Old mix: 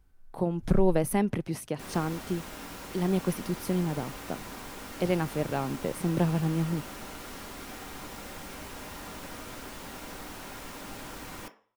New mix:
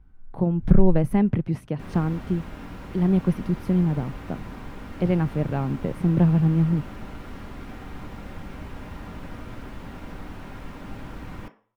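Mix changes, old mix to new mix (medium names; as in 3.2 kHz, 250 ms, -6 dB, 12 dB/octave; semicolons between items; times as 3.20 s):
first sound: send +9.5 dB; master: add tone controls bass +11 dB, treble -15 dB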